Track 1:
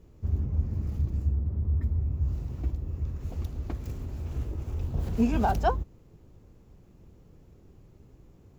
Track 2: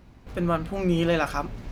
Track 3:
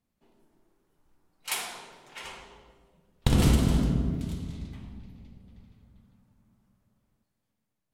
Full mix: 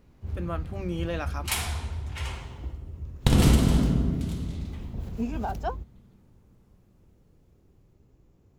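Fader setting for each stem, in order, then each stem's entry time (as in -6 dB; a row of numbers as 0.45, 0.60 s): -6.0, -9.0, +2.5 dB; 0.00, 0.00, 0.00 s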